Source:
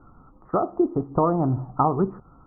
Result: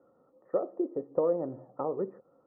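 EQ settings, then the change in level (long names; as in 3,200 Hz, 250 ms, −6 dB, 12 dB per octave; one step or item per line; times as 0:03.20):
high-pass filter 220 Hz 12 dB per octave
dynamic equaliser 690 Hz, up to −6 dB, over −39 dBFS, Q 3.8
formant resonators in series e
+5.5 dB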